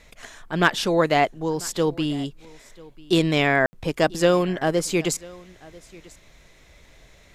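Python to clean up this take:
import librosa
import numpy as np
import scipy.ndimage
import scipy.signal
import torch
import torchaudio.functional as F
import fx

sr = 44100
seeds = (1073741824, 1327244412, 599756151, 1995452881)

y = fx.fix_declip(x, sr, threshold_db=-5.0)
y = fx.fix_ambience(y, sr, seeds[0], print_start_s=6.19, print_end_s=6.69, start_s=3.66, end_s=3.73)
y = fx.fix_echo_inverse(y, sr, delay_ms=992, level_db=-23.0)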